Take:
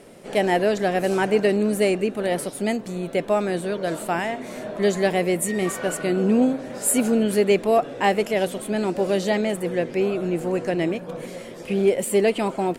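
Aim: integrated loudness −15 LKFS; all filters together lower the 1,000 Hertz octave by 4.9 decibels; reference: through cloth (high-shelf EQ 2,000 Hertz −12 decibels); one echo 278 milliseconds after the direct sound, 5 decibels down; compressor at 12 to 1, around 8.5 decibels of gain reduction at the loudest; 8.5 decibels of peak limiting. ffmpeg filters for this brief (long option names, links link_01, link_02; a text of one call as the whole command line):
ffmpeg -i in.wav -af "equalizer=frequency=1000:width_type=o:gain=-5,acompressor=threshold=-23dB:ratio=12,alimiter=limit=-23dB:level=0:latency=1,highshelf=frequency=2000:gain=-12,aecho=1:1:278:0.562,volume=16.5dB" out.wav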